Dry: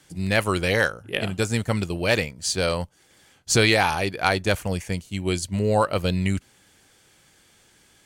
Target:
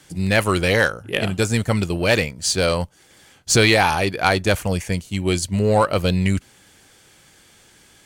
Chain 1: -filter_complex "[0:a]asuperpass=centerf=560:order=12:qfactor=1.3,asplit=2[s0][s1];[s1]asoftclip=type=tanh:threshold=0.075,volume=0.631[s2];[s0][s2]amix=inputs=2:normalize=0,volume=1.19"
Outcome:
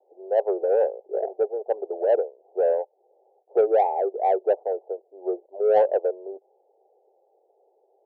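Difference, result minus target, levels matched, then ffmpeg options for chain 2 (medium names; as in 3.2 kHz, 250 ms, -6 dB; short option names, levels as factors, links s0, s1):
500 Hz band +5.5 dB
-filter_complex "[0:a]asplit=2[s0][s1];[s1]asoftclip=type=tanh:threshold=0.075,volume=0.631[s2];[s0][s2]amix=inputs=2:normalize=0,volume=1.19"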